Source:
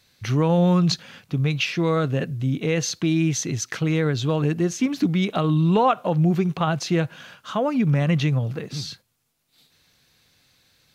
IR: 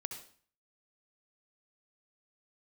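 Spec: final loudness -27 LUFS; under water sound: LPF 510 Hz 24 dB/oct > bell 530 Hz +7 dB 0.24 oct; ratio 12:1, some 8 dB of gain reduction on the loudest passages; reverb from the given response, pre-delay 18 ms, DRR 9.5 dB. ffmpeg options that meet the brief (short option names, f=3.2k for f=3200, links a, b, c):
-filter_complex "[0:a]acompressor=threshold=-23dB:ratio=12,asplit=2[a][b];[1:a]atrim=start_sample=2205,adelay=18[c];[b][c]afir=irnorm=-1:irlink=0,volume=-8.5dB[d];[a][d]amix=inputs=2:normalize=0,lowpass=f=510:w=0.5412,lowpass=f=510:w=1.3066,equalizer=f=530:t=o:w=0.24:g=7,volume=1.5dB"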